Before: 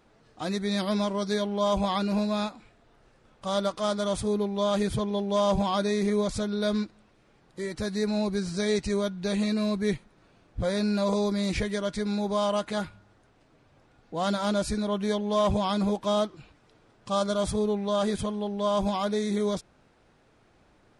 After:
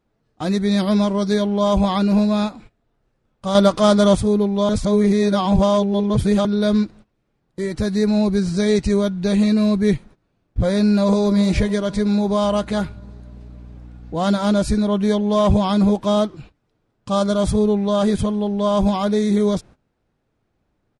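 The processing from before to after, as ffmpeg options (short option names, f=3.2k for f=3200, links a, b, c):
-filter_complex "[0:a]asplit=2[a][b];[b]afade=t=in:st=10.79:d=0.01,afade=t=out:st=11.24:d=0.01,aecho=0:1:280|560|840|1120|1400|1680|1960|2240|2520:0.199526|0.139668|0.0977679|0.0684375|0.0479062|0.0335344|0.0234741|0.0164318|0.0115023[c];[a][c]amix=inputs=2:normalize=0,asettb=1/sr,asplit=3[d][e][f];[d]atrim=end=12.434[g];[e]atrim=start=12.43:end=14.16,asetpts=PTS-STARTPTS,afade=t=in:d=0.004:c=qsin,afade=t=out:st=1.726:d=0.004:c=qsin,aeval=exprs='val(0)+0.00355*(sin(2*PI*60*n/s)+sin(2*PI*2*60*n/s)/2+sin(2*PI*3*60*n/s)/3+sin(2*PI*4*60*n/s)/4+sin(2*PI*5*60*n/s)/5)':c=same[h];[f]atrim=start=14.156[i];[g][h]acrossfade=d=0.004:c1=hsin:c2=qsin[j];[j][i]acrossfade=d=0.004:c1=qsin:c2=hsin,asplit=5[k][l][m][n][o];[k]atrim=end=3.552[p];[l]atrim=start=3.548:end=4.152,asetpts=PTS-STARTPTS,volume=6dB[q];[m]atrim=start=4.148:end=4.692[r];[n]atrim=start=4.688:end=6.452,asetpts=PTS-STARTPTS,areverse[s];[o]atrim=start=6.448[t];[p][q]acrossfade=d=0.004:c1=hsin:c2=hsin[u];[u][r]acrossfade=d=0.004:c1=hsin:c2=hsin[v];[v][s]acrossfade=d=0.004:c1=hsin:c2=hsin[w];[w][t]acrossfade=d=0.004:c1=hsin:c2=hsin,lowshelf=f=370:g=8.5,agate=range=-18dB:threshold=-44dB:ratio=16:detection=peak,volume=4.5dB"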